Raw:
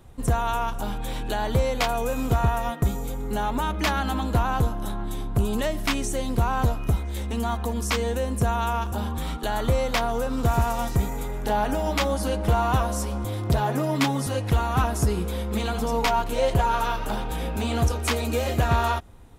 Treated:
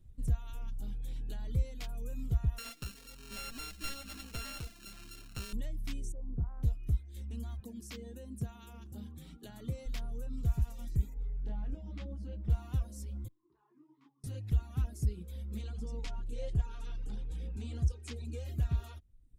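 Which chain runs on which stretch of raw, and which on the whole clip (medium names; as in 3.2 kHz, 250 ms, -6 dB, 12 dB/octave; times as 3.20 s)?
2.58–5.53 s: sorted samples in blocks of 32 samples + tilt EQ +2 dB/octave + overdrive pedal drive 15 dB, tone 5.5 kHz, clips at -2.5 dBFS
6.12–6.63 s: low-pass 1.3 kHz 24 dB/octave + transformer saturation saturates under 140 Hz
7.60–9.86 s: high-pass 180 Hz + bass shelf 230 Hz +7.5 dB
11.14–12.50 s: tape spacing loss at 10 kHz 23 dB + doubling 25 ms -8.5 dB
13.28–14.24 s: two resonant band-passes 580 Hz, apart 1.6 oct + bass shelf 420 Hz -10.5 dB + detune thickener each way 55 cents
15.62–18.45 s: low-pass 9.5 kHz 24 dB/octave + peaking EQ 530 Hz +5 dB 0.36 oct + band-stop 620 Hz, Q 6.2
whole clip: reverb removal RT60 0.88 s; amplifier tone stack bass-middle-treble 10-0-1; trim +2 dB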